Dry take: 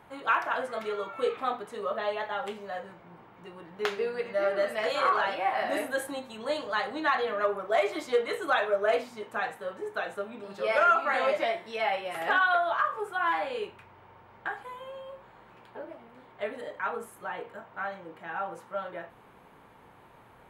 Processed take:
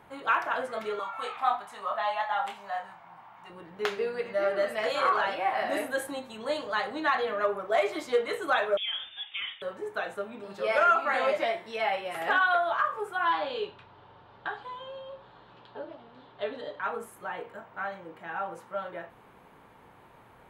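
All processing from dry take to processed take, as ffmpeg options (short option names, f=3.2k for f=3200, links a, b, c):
-filter_complex "[0:a]asettb=1/sr,asplit=3[a][b][c];[a]atrim=end=0.994[d];[b]atrim=start=0.99:end=3.5,asetpts=PTS-STARTPTS,afade=t=in:d=0.004:c=qsin,afade=t=out:st=2.506:d=0.004:c=qsin,lowshelf=f=600:t=q:w=3:g=-9.5,asplit=2[e][f];[f]adelay=25,volume=-7.5dB[g];[e][g]amix=inputs=2:normalize=0,atrim=end_sample=110691[h];[c]atrim=start=3.496[i];[d][h]acrossfade=d=0.004:c1=hsin:c2=qsin[j];[j][i]acrossfade=d=0.004:c1=qsin:c2=hsin,asettb=1/sr,asplit=3[k][l][m];[k]atrim=end=8.774[n];[l]atrim=start=8.77:end=9.62,asetpts=PTS-STARTPTS,afade=t=in:d=0.004:c=qsin,afade=t=out:st=0.846:d=0.004:c=qsin,acompressor=threshold=-30dB:ratio=5:attack=3.2:release=140:knee=1:detection=peak,lowpass=f=3.2k:t=q:w=0.5098,lowpass=f=3.2k:t=q:w=0.6013,lowpass=f=3.2k:t=q:w=0.9,lowpass=f=3.2k:t=q:w=2.563,afreqshift=-3800[o];[m]atrim=start=9.616[p];[n][o]acrossfade=d=0.004:c1=hsin:c2=qsin[q];[q][p]acrossfade=d=0.004:c1=qsin:c2=hsin,asettb=1/sr,asplit=3[r][s][t];[r]atrim=end=13.254[u];[s]atrim=start=13.25:end=16.85,asetpts=PTS-STARTPTS,afade=t=in:d=0.004:c=qsin,afade=t=out:st=3.596:d=0.004:c=qsin,lowpass=f=3.9k:t=q:w=2.6,equalizer=f=2.2k:w=2.8:g=-9,aecho=1:1:7:0.33,atrim=end_sample=158760[v];[t]atrim=start=16.846[w];[u][v]acrossfade=d=0.004:c1=hsin:c2=qsin[x];[x][w]acrossfade=d=0.004:c1=qsin:c2=hsin"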